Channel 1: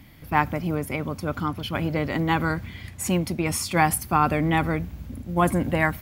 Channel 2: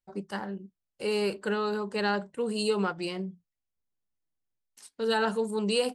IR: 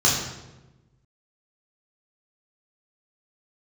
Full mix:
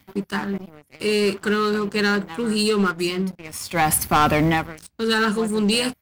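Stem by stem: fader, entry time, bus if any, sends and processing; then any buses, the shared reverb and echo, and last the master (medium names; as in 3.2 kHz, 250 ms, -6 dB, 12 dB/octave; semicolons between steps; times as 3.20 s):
-1.0 dB, 0.00 s, no send, bass shelf 440 Hz -5.5 dB; auto duck -21 dB, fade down 0.30 s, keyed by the second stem
-0.5 dB, 0.00 s, no send, high-order bell 660 Hz -12.5 dB 1.1 oct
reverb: none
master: high-pass 46 Hz 24 dB/octave; waveshaping leveller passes 3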